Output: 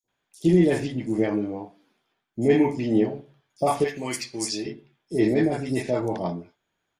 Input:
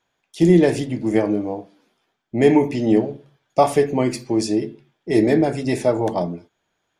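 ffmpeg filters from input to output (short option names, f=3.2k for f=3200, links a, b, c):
-filter_complex "[0:a]asettb=1/sr,asplit=3[a][b][c];[a]atrim=end=3.804[d];[b]atrim=start=3.8:end=4.62,asetpts=PTS-STARTPTS,afade=t=in:d=0.004:c=qsin,afade=t=out:st=0.816:d=0.004:c=qsin,tiltshelf=f=1.3k:g=-9[e];[c]atrim=start=4.616[f];[d][e]acrossfade=d=0.004:c1=hsin:c2=qsin[g];[g][f]acrossfade=d=0.004:c1=qsin:c2=hsin,acrossover=split=660|5800[h][i][j];[h]adelay=40[k];[i]adelay=80[l];[k][l][j]amix=inputs=3:normalize=0,volume=-4dB"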